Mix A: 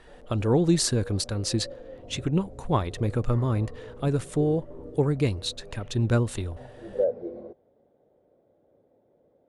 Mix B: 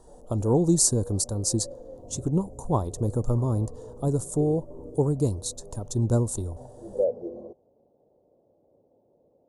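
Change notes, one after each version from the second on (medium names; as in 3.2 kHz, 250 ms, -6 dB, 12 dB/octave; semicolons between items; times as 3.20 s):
master: add FFT filter 960 Hz 0 dB, 2.2 kHz -30 dB, 6.8 kHz +8 dB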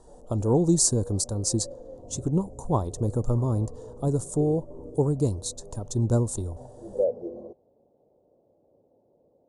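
speech: add low-pass 9.9 kHz 24 dB/octave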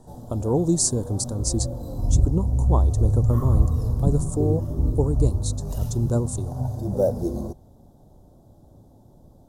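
background: remove band-pass filter 490 Hz, Q 3.9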